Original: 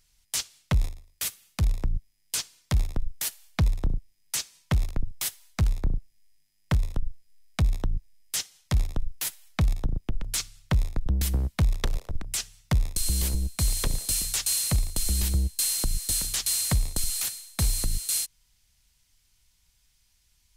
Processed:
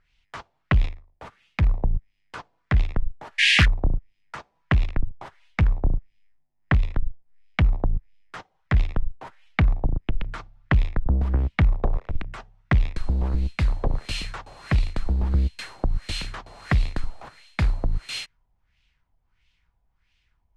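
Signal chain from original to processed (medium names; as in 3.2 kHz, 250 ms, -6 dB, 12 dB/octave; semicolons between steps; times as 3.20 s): painted sound noise, 3.38–3.66 s, 1.6–11 kHz -21 dBFS; in parallel at -4 dB: crossover distortion -41 dBFS; on the sum: LFO low-pass sine 1.5 Hz 740–2900 Hz; loudspeaker Doppler distortion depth 0.56 ms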